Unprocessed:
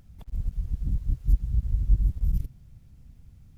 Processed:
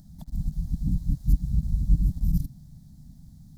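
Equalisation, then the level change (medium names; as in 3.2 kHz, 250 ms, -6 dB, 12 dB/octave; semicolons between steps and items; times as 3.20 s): FFT filter 110 Hz 0 dB, 160 Hz +12 dB, 290 Hz +7 dB, 430 Hz -21 dB, 610 Hz +3 dB, 870 Hz +2 dB, 1.3 kHz -7 dB, 1.8 kHz -3 dB, 2.6 kHz -14 dB, 4 kHz +8 dB; 0.0 dB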